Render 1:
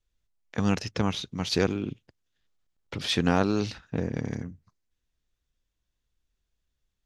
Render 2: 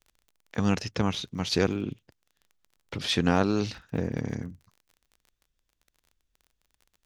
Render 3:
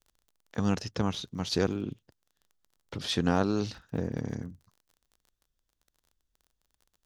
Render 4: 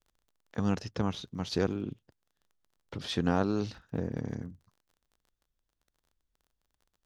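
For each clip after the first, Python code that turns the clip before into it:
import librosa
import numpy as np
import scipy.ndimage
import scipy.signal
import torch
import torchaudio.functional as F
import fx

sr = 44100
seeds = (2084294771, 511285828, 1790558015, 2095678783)

y1 = fx.dmg_crackle(x, sr, seeds[0], per_s=26.0, level_db=-44.0)
y2 = fx.peak_eq(y1, sr, hz=2300.0, db=-6.5, octaves=0.64)
y2 = y2 * 10.0 ** (-2.5 / 20.0)
y3 = fx.high_shelf(y2, sr, hz=3800.0, db=-6.5)
y3 = y3 * 10.0 ** (-1.5 / 20.0)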